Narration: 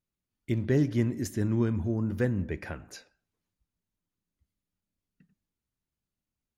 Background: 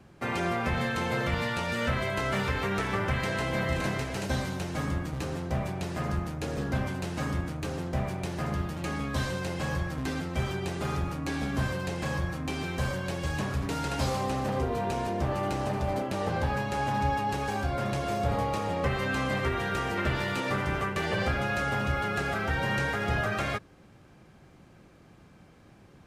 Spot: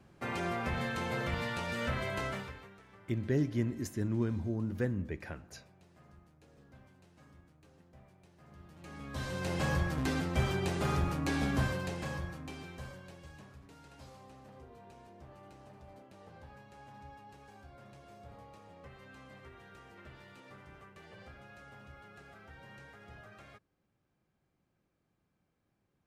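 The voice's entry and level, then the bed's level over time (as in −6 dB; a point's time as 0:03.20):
2.60 s, −5.5 dB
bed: 0:02.25 −6 dB
0:02.78 −28.5 dB
0:08.39 −28.5 dB
0:09.55 −0.5 dB
0:11.49 −0.5 dB
0:13.62 −24.5 dB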